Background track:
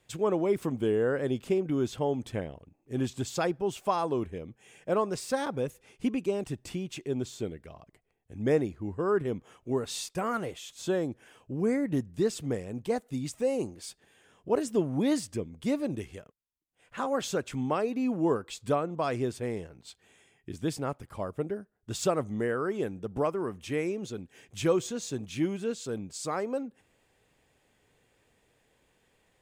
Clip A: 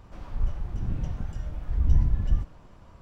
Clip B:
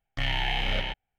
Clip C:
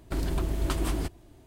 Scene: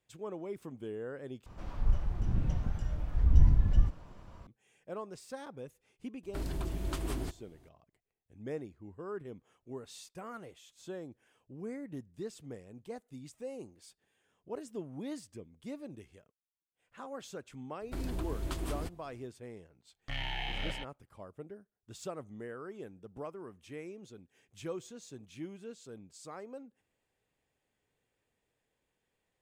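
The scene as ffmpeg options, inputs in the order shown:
ffmpeg -i bed.wav -i cue0.wav -i cue1.wav -i cue2.wav -filter_complex "[3:a]asplit=2[link_01][link_02];[0:a]volume=-14dB,asplit=2[link_03][link_04];[link_03]atrim=end=1.464[link_05];[1:a]atrim=end=3.01,asetpts=PTS-STARTPTS,volume=-1dB[link_06];[link_04]atrim=start=4.466[link_07];[link_01]atrim=end=1.46,asetpts=PTS-STARTPTS,volume=-7.5dB,afade=type=in:duration=0.004:curve=hsin,afade=type=out:start_time=1.456:duration=0.004:curve=hsin,adelay=6230[link_08];[link_02]atrim=end=1.46,asetpts=PTS-STARTPTS,volume=-8.5dB,afade=type=in:duration=0.004:curve=hsin,afade=type=out:start_time=1.456:duration=0.004:curve=hsin,adelay=17810[link_09];[2:a]atrim=end=1.18,asetpts=PTS-STARTPTS,volume=-9.5dB,afade=type=in:duration=0.004:curve=hsin,afade=type=out:start_time=1.176:duration=0.004:curve=hsin,adelay=19910[link_10];[link_05][link_06]acrossfade=duration=0.004:curve1=hsin:curve2=hsin[link_11];[link_11][link_07]acrossfade=duration=0.004:curve1=hsin:curve2=hsin[link_12];[link_12][link_08][link_09][link_10]amix=inputs=4:normalize=0" out.wav

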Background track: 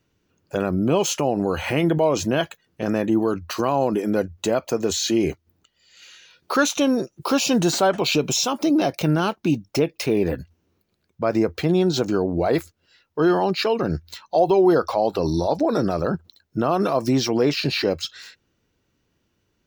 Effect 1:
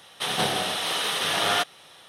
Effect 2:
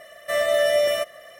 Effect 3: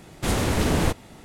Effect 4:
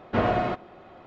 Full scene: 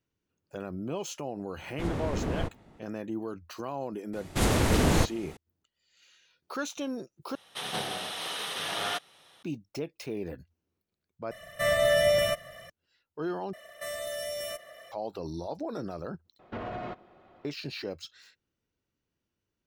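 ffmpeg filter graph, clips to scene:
ffmpeg -i bed.wav -i cue0.wav -i cue1.wav -i cue2.wav -i cue3.wav -filter_complex "[3:a]asplit=2[link_01][link_02];[2:a]asplit=2[link_03][link_04];[0:a]volume=-15dB[link_05];[link_01]lowpass=frequency=1500:poles=1[link_06];[link_03]lowshelf=frequency=220:width_type=q:width=1.5:gain=14[link_07];[link_04]acrossover=split=170|4400[link_08][link_09][link_10];[link_09]acompressor=threshold=-36dB:ratio=3:attack=12:release=52:knee=2.83:detection=peak[link_11];[link_08][link_11][link_10]amix=inputs=3:normalize=0[link_12];[4:a]alimiter=limit=-19dB:level=0:latency=1:release=47[link_13];[link_05]asplit=5[link_14][link_15][link_16][link_17][link_18];[link_14]atrim=end=7.354[link_19];[1:a]atrim=end=2.08,asetpts=PTS-STARTPTS,volume=-8.5dB[link_20];[link_15]atrim=start=9.426:end=11.314[link_21];[link_07]atrim=end=1.39,asetpts=PTS-STARTPTS,volume=-2dB[link_22];[link_16]atrim=start=12.696:end=13.534[link_23];[link_12]atrim=end=1.39,asetpts=PTS-STARTPTS,volume=-5dB[link_24];[link_17]atrim=start=14.916:end=16.394[link_25];[link_13]atrim=end=1.06,asetpts=PTS-STARTPTS,volume=-9.5dB[link_26];[link_18]atrim=start=17.446[link_27];[link_06]atrim=end=1.24,asetpts=PTS-STARTPTS,volume=-9dB,afade=type=in:duration=0.004:curve=hsin,afade=type=out:start_time=1.236:duration=0.004:curve=hsin,adelay=1560[link_28];[link_02]atrim=end=1.24,asetpts=PTS-STARTPTS,volume=-1.5dB,afade=type=in:duration=0.004:curve=hsin,afade=type=out:start_time=1.236:duration=0.004:curve=hsin,adelay=182133S[link_29];[link_19][link_20]acrossfade=duration=0.004:curve1=hsin:curve2=hsin[link_30];[link_30][link_21]acrossfade=duration=0.004:curve1=hsin:curve2=hsin[link_31];[link_31][link_22]acrossfade=duration=0.004:curve1=hsin:curve2=hsin[link_32];[link_32][link_23]acrossfade=duration=0.004:curve1=hsin:curve2=hsin[link_33];[link_33][link_24]acrossfade=duration=0.004:curve1=hsin:curve2=hsin[link_34];[link_34][link_25]acrossfade=duration=0.004:curve1=hsin:curve2=hsin[link_35];[link_35][link_26]acrossfade=duration=0.004:curve1=hsin:curve2=hsin[link_36];[link_36][link_27]acrossfade=duration=0.004:curve1=hsin:curve2=hsin[link_37];[link_37][link_28][link_29]amix=inputs=3:normalize=0" out.wav

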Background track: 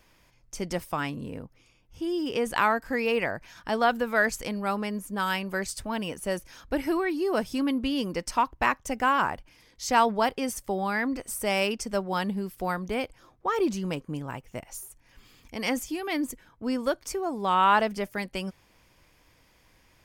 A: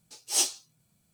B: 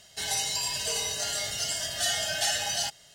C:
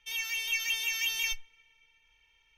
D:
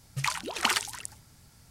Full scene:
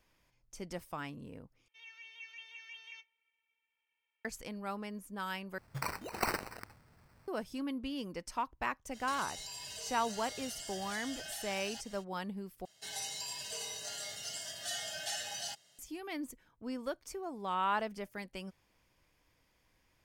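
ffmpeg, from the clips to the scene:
ffmpeg -i bed.wav -i cue0.wav -i cue1.wav -i cue2.wav -i cue3.wav -filter_complex "[2:a]asplit=2[link_01][link_02];[0:a]volume=-11.5dB[link_03];[3:a]highpass=380,lowpass=2500[link_04];[4:a]acrusher=samples=13:mix=1:aa=0.000001[link_05];[link_01]acompressor=threshold=-41dB:ratio=6:attack=3.2:release=140:knee=1:detection=peak[link_06];[link_02]highpass=130[link_07];[link_03]asplit=4[link_08][link_09][link_10][link_11];[link_08]atrim=end=1.684[link_12];[link_04]atrim=end=2.57,asetpts=PTS-STARTPTS,volume=-15dB[link_13];[link_09]atrim=start=4.246:end=5.584[link_14];[link_05]atrim=end=1.7,asetpts=PTS-STARTPTS,volume=-7.5dB[link_15];[link_10]atrim=start=7.276:end=12.654[link_16];[link_07]atrim=end=3.14,asetpts=PTS-STARTPTS,volume=-11.5dB[link_17];[link_11]atrim=start=15.786[link_18];[link_06]atrim=end=3.14,asetpts=PTS-STARTPTS,volume=-2dB,afade=type=in:duration=0.05,afade=type=out:start_time=3.09:duration=0.05,adelay=8910[link_19];[link_12][link_13]acrossfade=duration=0.004:curve1=hsin:curve2=hsin[link_20];[link_20][link_14]acrossfade=duration=0.004:curve1=hsin:curve2=hsin[link_21];[link_21][link_15]acrossfade=duration=0.004:curve1=hsin:curve2=hsin[link_22];[link_22][link_16]acrossfade=duration=0.004:curve1=hsin:curve2=hsin[link_23];[link_23][link_17]acrossfade=duration=0.004:curve1=hsin:curve2=hsin[link_24];[link_24][link_18]acrossfade=duration=0.004:curve1=hsin:curve2=hsin[link_25];[link_25][link_19]amix=inputs=2:normalize=0" out.wav

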